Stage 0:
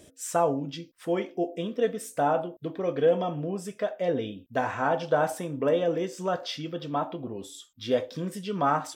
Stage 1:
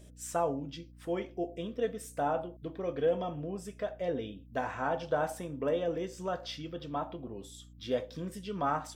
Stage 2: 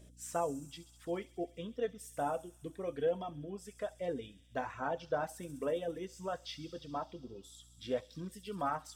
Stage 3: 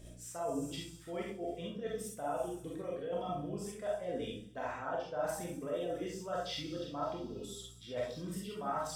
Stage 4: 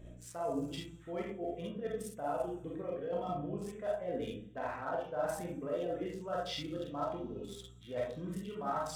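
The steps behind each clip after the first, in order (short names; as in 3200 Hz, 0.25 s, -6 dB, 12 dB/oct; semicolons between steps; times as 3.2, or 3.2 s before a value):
hum 60 Hz, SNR 19 dB; gain -6.5 dB
reverb removal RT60 1.2 s; thin delay 67 ms, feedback 84%, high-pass 5200 Hz, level -8.5 dB; gain -3.5 dB
reverse; compressor 6:1, threshold -43 dBFS, peak gain reduction 14.5 dB; reverse; digital reverb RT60 0.52 s, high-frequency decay 0.4×, pre-delay 5 ms, DRR -3.5 dB; gain +3 dB
Wiener smoothing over 9 samples; gain +1 dB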